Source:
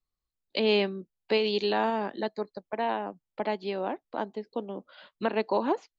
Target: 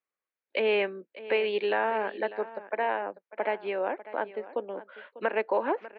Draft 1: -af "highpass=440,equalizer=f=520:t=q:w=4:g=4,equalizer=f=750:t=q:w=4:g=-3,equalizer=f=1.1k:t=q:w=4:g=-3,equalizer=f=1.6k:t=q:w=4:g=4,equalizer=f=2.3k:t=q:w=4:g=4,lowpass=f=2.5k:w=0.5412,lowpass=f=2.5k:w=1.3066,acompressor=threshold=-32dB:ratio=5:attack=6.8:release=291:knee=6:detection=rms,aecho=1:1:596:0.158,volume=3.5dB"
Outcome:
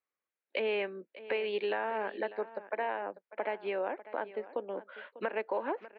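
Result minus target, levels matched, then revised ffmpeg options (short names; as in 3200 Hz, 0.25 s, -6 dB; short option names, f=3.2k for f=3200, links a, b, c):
compressor: peak gain reduction +7.5 dB
-af "highpass=440,equalizer=f=520:t=q:w=4:g=4,equalizer=f=750:t=q:w=4:g=-3,equalizer=f=1.1k:t=q:w=4:g=-3,equalizer=f=1.6k:t=q:w=4:g=4,equalizer=f=2.3k:t=q:w=4:g=4,lowpass=f=2.5k:w=0.5412,lowpass=f=2.5k:w=1.3066,acompressor=threshold=-22dB:ratio=5:attack=6.8:release=291:knee=6:detection=rms,aecho=1:1:596:0.158,volume=3.5dB"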